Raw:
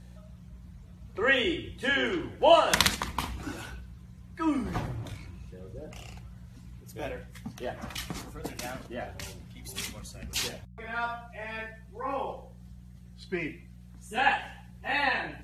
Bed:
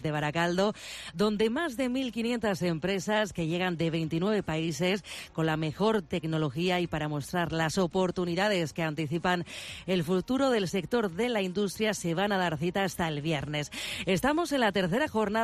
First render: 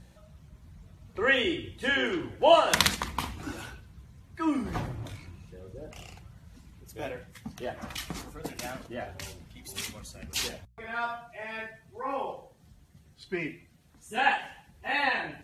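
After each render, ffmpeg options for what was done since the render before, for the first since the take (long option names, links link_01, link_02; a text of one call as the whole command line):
ffmpeg -i in.wav -af "bandreject=frequency=60:width_type=h:width=4,bandreject=frequency=120:width_type=h:width=4,bandreject=frequency=180:width_type=h:width=4" out.wav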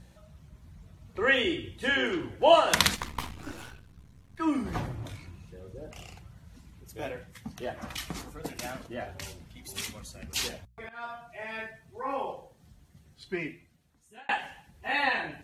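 ffmpeg -i in.wav -filter_complex "[0:a]asettb=1/sr,asplit=3[link_01][link_02][link_03];[link_01]atrim=end=2.964[link_04];[link_02]atrim=start=2.96:end=4.4,asetpts=PTS-STARTPTS,afade=type=in:duration=0.004:curve=qsin,afade=type=out:start_time=1.436:duration=0.004:curve=qsin,aeval=exprs='if(lt(val(0),0),0.251*val(0),val(0))':channel_layout=same[link_05];[link_03]atrim=start=4.396[link_06];[link_04][link_05]acrossfade=duration=0.004:curve1=hsin:curve2=qsin[link_07];[link_07][link_06]acrossfade=duration=0.004:curve1=qsin:curve2=hsin,asplit=3[link_08][link_09][link_10];[link_08]atrim=end=10.89,asetpts=PTS-STARTPTS,afade=type=out:start_time=10.886:duration=0.004:curve=hsin:silence=0.133352[link_11];[link_09]atrim=start=10.89:end=14.29,asetpts=PTS-STARTPTS,afade=type=in:duration=0.43:silence=0.133352,afade=type=out:start_time=2.4:duration=1[link_12];[link_10]atrim=start=14.29,asetpts=PTS-STARTPTS,afade=type=in:duration=0.004:curve=hsin[link_13];[link_11][link_12][link_13]concat=n=3:v=0:a=1" out.wav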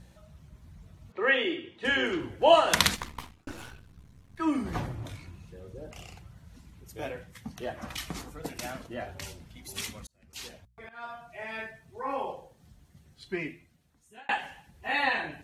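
ffmpeg -i in.wav -filter_complex "[0:a]asettb=1/sr,asplit=3[link_01][link_02][link_03];[link_01]atrim=end=1.124[link_04];[link_02]atrim=start=1.12:end=1.85,asetpts=PTS-STARTPTS,afade=type=in:duration=0.004:curve=qsin,afade=type=out:start_time=0.726:duration=0.004:curve=qsin,highpass=270,lowpass=3400[link_05];[link_03]atrim=start=1.846[link_06];[link_04][link_05]acrossfade=duration=0.004:curve1=hsin:curve2=qsin[link_07];[link_07][link_06]acrossfade=duration=0.004:curve1=qsin:curve2=hsin,asplit=3[link_08][link_09][link_10];[link_08]atrim=end=3.47,asetpts=PTS-STARTPTS,afade=type=out:start_time=2.92:duration=0.55[link_11];[link_09]atrim=start=3.47:end=10.07,asetpts=PTS-STARTPTS,afade=type=in:duration=0.004:curve=hsin,afade=type=out:start_time=6.596:duration=0.004:curve=hsin[link_12];[link_10]atrim=start=10.07,asetpts=PTS-STARTPTS,afade=type=in:duration=1.19[link_13];[link_11][link_12][link_13]concat=n=3:v=0:a=1" out.wav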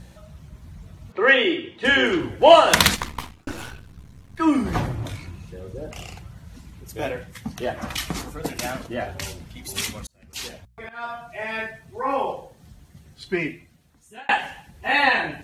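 ffmpeg -i in.wav -af "aeval=exprs='0.841*sin(PI/2*1.78*val(0)/0.841)':channel_layout=same" out.wav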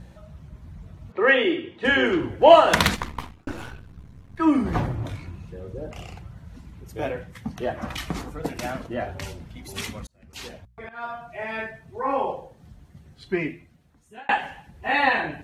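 ffmpeg -i in.wav -af "highshelf=frequency=3000:gain=-10" out.wav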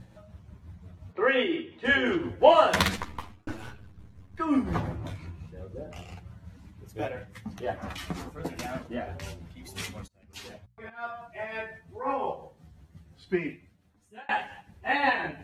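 ffmpeg -i in.wav -af "flanger=delay=9.3:depth=3.4:regen=-5:speed=0.28:shape=triangular,tremolo=f=5.7:d=0.4" out.wav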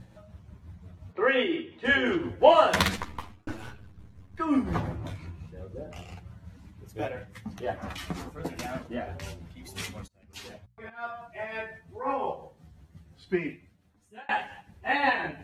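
ffmpeg -i in.wav -af anull out.wav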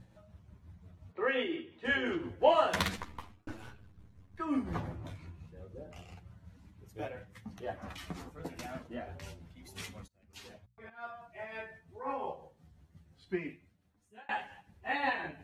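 ffmpeg -i in.wav -af "volume=-7.5dB" out.wav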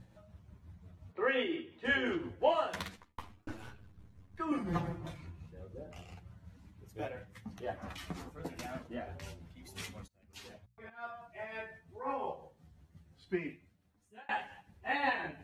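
ffmpeg -i in.wav -filter_complex "[0:a]asettb=1/sr,asplit=3[link_01][link_02][link_03];[link_01]atrim=end=4.514[link_04];[link_02]atrim=start=4.51:end=5.21,asetpts=PTS-STARTPTS,afade=type=in:duration=0.004:curve=qsin,afade=type=out:start_time=0.696:duration=0.004:curve=qsin,aecho=1:1:5.8:0.85,atrim=end_sample=30870[link_05];[link_03]atrim=start=5.206[link_06];[link_04][link_05]acrossfade=duration=0.004:curve1=hsin:curve2=qsin[link_07];[link_07][link_06]acrossfade=duration=0.004:curve1=qsin:curve2=hsin,asplit=2[link_08][link_09];[link_08]atrim=end=3.18,asetpts=PTS-STARTPTS,afade=type=out:start_time=2.08:duration=1.1[link_10];[link_09]atrim=start=3.18,asetpts=PTS-STARTPTS,afade=type=in:duration=0.004:curve=hsin[link_11];[link_10][link_11]concat=n=2:v=0:a=1" out.wav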